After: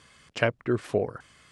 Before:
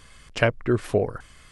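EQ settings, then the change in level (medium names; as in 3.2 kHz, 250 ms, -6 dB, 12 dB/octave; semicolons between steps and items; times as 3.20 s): high-pass 110 Hz 12 dB/octave; low-pass 9.2 kHz 12 dB/octave; -3.5 dB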